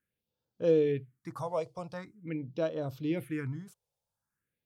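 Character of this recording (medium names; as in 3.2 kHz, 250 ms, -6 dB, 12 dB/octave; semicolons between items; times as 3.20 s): phasing stages 4, 0.45 Hz, lowest notch 270–2100 Hz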